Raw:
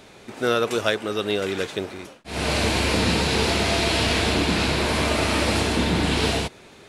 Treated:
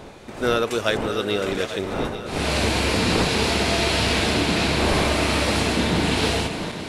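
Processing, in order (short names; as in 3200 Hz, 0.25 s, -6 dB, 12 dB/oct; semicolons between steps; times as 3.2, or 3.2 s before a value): regenerating reverse delay 0.42 s, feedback 74%, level -10.5 dB; wind noise 620 Hz -33 dBFS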